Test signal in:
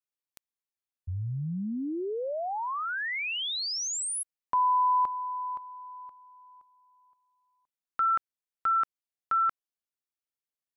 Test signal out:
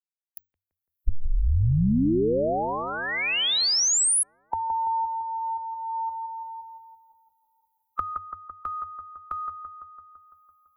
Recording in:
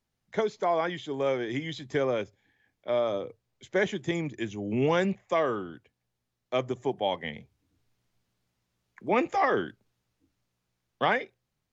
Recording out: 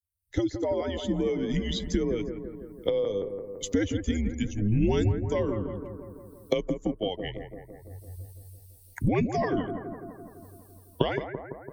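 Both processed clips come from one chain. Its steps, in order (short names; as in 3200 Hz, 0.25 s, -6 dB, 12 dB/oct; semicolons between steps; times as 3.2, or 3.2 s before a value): per-bin expansion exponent 1.5; recorder AGC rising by 37 dB/s, up to +34 dB; bell 1400 Hz -12.5 dB 1.4 oct; frequency shift -97 Hz; on a send: analogue delay 0.168 s, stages 2048, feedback 65%, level -8 dB; on the sum: gain +3.5 dB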